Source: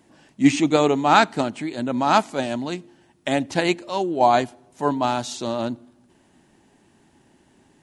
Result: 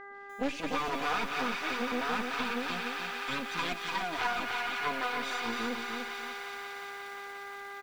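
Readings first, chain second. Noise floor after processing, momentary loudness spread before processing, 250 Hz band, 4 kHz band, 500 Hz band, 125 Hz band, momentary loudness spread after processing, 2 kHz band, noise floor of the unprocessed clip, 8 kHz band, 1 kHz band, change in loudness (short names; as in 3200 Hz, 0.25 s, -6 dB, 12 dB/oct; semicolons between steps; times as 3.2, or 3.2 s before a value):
-45 dBFS, 12 LU, -15.5 dB, -6.0 dB, -15.0 dB, -18.5 dB, 9 LU, -3.5 dB, -59 dBFS, -11.0 dB, -11.5 dB, -12.5 dB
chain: minimum comb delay 0.85 ms; comb 4.1 ms, depth 88%; half-wave rectifier; spectral noise reduction 9 dB; low shelf 210 Hz -7.5 dB; thin delay 0.177 s, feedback 85%, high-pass 1400 Hz, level -8.5 dB; buzz 400 Hz, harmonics 5, -48 dBFS 0 dB/oct; in parallel at -8 dB: wrapped overs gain 15.5 dB; on the sum: compressor 4:1, threshold -28 dBFS, peak gain reduction 13 dB; LPF 4300 Hz 12 dB/oct; lo-fi delay 0.295 s, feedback 35%, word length 8-bit, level -5 dB; gain -2 dB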